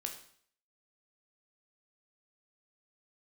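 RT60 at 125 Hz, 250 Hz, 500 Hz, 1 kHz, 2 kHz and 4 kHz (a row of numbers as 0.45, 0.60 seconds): 0.50, 0.55, 0.55, 0.55, 0.55, 0.55 seconds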